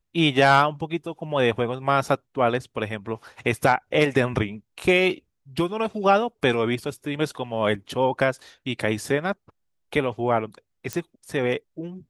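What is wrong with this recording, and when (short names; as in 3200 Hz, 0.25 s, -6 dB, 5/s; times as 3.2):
10.93 pop -13 dBFS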